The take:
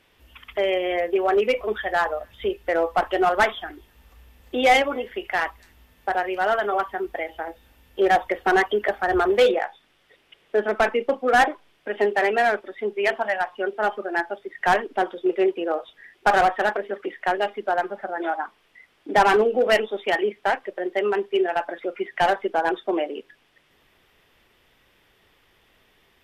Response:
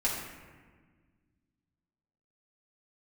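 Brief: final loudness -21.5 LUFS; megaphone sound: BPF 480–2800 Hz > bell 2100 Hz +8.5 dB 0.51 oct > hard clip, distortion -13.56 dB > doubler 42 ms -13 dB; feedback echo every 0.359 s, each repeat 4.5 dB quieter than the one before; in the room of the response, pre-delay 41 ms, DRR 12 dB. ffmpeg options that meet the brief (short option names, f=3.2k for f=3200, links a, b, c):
-filter_complex "[0:a]aecho=1:1:359|718|1077|1436|1795|2154|2513|2872|3231:0.596|0.357|0.214|0.129|0.0772|0.0463|0.0278|0.0167|0.01,asplit=2[a][b];[1:a]atrim=start_sample=2205,adelay=41[c];[b][c]afir=irnorm=-1:irlink=0,volume=-20dB[d];[a][d]amix=inputs=2:normalize=0,highpass=480,lowpass=2.8k,equalizer=f=2.1k:t=o:w=0.51:g=8.5,asoftclip=type=hard:threshold=-14dB,asplit=2[e][f];[f]adelay=42,volume=-13dB[g];[e][g]amix=inputs=2:normalize=0,volume=0.5dB"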